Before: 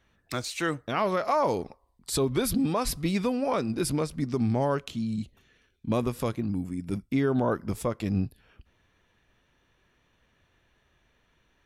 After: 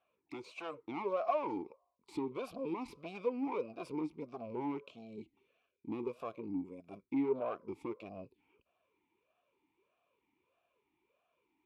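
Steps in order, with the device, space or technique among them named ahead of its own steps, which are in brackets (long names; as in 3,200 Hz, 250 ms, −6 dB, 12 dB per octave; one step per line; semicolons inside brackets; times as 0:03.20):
talk box (tube saturation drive 25 dB, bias 0.55; formant filter swept between two vowels a-u 1.6 Hz)
level +4.5 dB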